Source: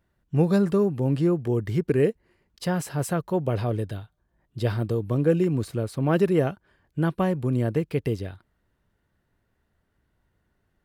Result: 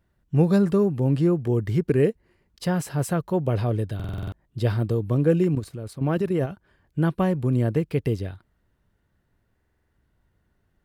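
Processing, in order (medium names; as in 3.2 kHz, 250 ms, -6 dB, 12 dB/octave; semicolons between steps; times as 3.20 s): bass shelf 200 Hz +4 dB; 5.55–6.51 s: level held to a coarse grid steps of 11 dB; buffer glitch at 3.95/9.55 s, samples 2048, times 7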